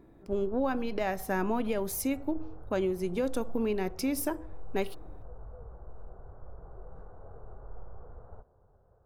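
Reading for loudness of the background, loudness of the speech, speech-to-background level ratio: -51.5 LUFS, -32.5 LUFS, 19.0 dB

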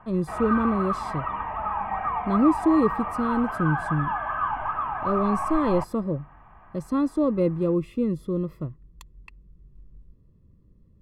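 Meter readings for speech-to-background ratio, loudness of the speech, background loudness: 3.0 dB, -26.0 LUFS, -29.0 LUFS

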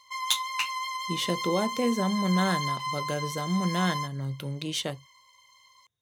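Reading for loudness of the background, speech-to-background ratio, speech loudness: -32.5 LUFS, 3.0 dB, -29.5 LUFS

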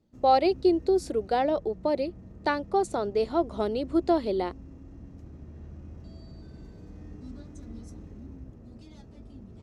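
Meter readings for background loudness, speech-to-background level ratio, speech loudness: -46.5 LUFS, 20.0 dB, -26.5 LUFS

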